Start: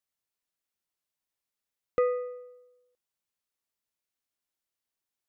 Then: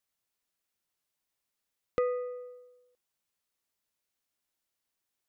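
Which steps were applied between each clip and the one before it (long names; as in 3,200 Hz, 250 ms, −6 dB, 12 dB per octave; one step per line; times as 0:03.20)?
downward compressor 1.5 to 1, threshold −42 dBFS, peak gain reduction 7.5 dB
level +3.5 dB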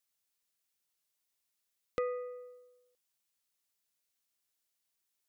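high-shelf EQ 2,400 Hz +8.5 dB
level −5.5 dB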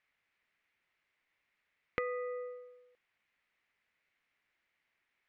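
downward compressor 4 to 1, threshold −44 dBFS, peak gain reduction 12 dB
low-pass with resonance 2,100 Hz, resonance Q 3.3
level +7.5 dB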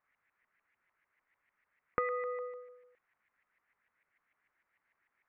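auto-filter low-pass saw up 6.7 Hz 1,000–2,100 Hz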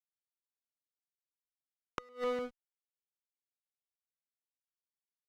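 slack as between gear wheels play −33 dBFS
gate with flip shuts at −31 dBFS, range −29 dB
tube saturation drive 33 dB, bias 0.5
level +10 dB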